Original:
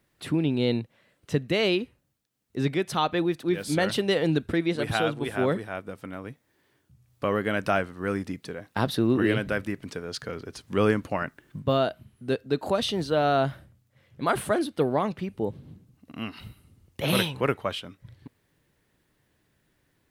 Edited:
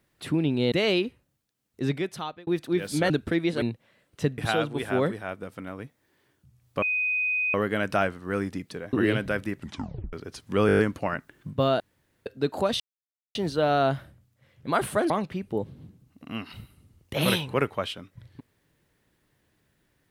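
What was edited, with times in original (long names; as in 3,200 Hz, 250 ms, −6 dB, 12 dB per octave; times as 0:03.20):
0:00.72–0:01.48: move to 0:04.84
0:02.59–0:03.23: fade out
0:03.86–0:04.32: remove
0:07.28: insert tone 2,500 Hz −23 dBFS 0.72 s
0:08.67–0:09.14: remove
0:09.78: tape stop 0.56 s
0:10.88: stutter 0.02 s, 7 plays
0:11.89–0:12.35: fill with room tone
0:12.89: splice in silence 0.55 s
0:14.64–0:14.97: remove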